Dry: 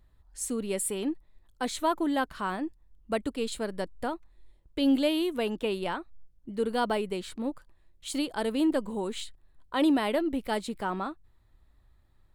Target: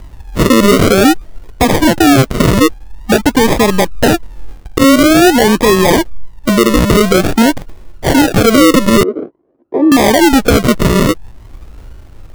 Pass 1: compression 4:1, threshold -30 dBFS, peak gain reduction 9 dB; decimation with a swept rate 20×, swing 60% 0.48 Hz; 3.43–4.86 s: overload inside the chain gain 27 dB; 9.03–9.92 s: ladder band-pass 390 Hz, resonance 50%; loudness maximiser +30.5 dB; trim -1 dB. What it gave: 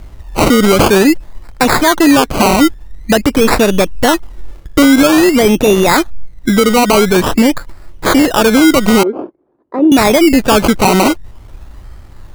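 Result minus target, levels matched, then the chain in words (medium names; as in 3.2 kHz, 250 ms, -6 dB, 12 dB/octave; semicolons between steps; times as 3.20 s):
decimation with a swept rate: distortion -8 dB
compression 4:1, threshold -30 dBFS, peak gain reduction 9 dB; decimation with a swept rate 43×, swing 60% 0.48 Hz; 3.43–4.86 s: overload inside the chain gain 27 dB; 9.03–9.92 s: ladder band-pass 390 Hz, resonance 50%; loudness maximiser +30.5 dB; trim -1 dB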